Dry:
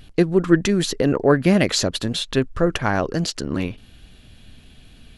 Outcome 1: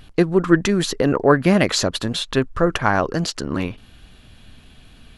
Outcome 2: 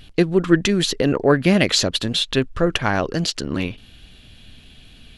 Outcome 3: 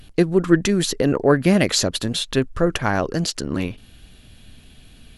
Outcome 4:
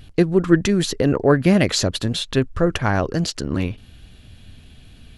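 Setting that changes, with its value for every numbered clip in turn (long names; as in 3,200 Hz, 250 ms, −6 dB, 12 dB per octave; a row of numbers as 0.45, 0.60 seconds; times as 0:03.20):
parametric band, centre frequency: 1,100, 3,200, 13,000, 88 Hertz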